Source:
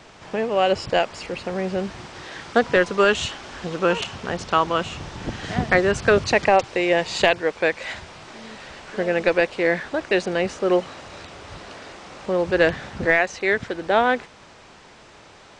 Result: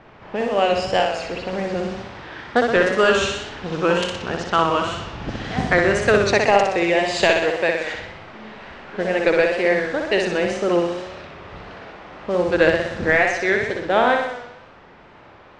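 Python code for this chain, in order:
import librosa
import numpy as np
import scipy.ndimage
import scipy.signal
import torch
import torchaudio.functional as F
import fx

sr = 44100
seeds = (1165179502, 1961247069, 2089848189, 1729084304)

y = fx.room_flutter(x, sr, wall_m=10.6, rt60_s=0.9)
y = fx.wow_flutter(y, sr, seeds[0], rate_hz=2.1, depth_cents=65.0)
y = fx.env_lowpass(y, sr, base_hz=1900.0, full_db=-17.5)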